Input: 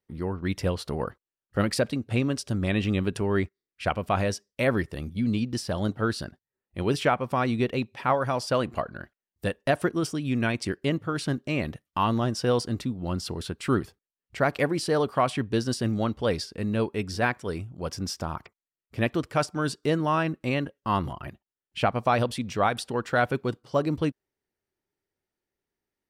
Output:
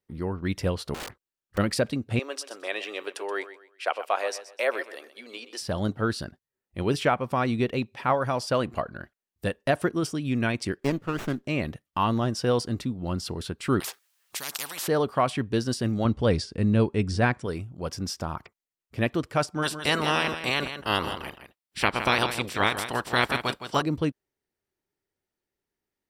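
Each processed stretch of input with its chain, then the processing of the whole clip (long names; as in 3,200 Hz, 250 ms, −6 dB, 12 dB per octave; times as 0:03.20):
0:00.94–0:01.58: wrap-around overflow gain 31 dB + highs frequency-modulated by the lows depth 0.84 ms
0:02.19–0:05.61: inverse Chebyshev high-pass filter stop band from 170 Hz, stop band 50 dB + repeating echo 126 ms, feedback 31%, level −14 dB
0:10.79–0:11.45: high-pass filter 170 Hz + high-shelf EQ 4,400 Hz +5 dB + windowed peak hold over 9 samples
0:13.80–0:14.88: high-pass filter 1,100 Hz + every bin compressed towards the loudest bin 10 to 1
0:16.05–0:17.46: Butterworth low-pass 10,000 Hz 48 dB per octave + low-shelf EQ 250 Hz +9 dB
0:19.62–0:23.81: ceiling on every frequency bin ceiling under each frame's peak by 24 dB + notch filter 6,600 Hz, Q 9.6 + single-tap delay 164 ms −10 dB
whole clip: no processing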